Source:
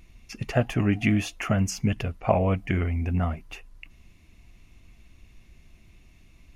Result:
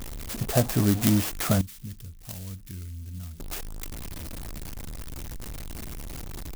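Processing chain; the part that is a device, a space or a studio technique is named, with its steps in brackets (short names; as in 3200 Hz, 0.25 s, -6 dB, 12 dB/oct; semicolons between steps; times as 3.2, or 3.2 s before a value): early CD player with a faulty converter (zero-crossing step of -31 dBFS; clock jitter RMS 0.12 ms); 1.61–3.4 passive tone stack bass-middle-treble 6-0-2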